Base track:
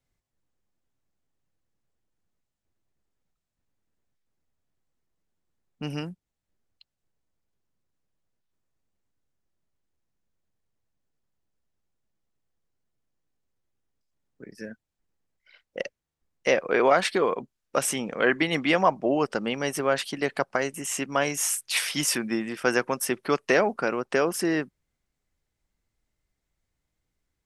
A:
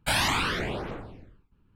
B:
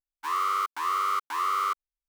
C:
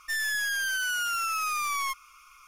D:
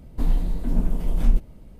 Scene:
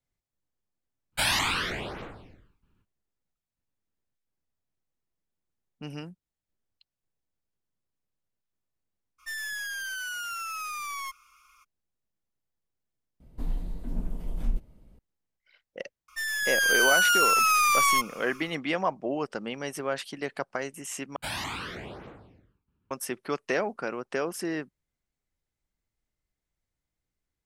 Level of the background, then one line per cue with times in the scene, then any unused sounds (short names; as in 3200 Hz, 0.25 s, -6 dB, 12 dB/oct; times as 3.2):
base track -6.5 dB
1.11 add A -2 dB, fades 0.05 s + tilt shelf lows -3.5 dB, about 1100 Hz
9.18 add C -6 dB, fades 0.02 s
13.2 replace with D -10 dB
16.08 add C -3 dB + AGC gain up to 10.5 dB
21.16 replace with A -9 dB + HPF 53 Hz
not used: B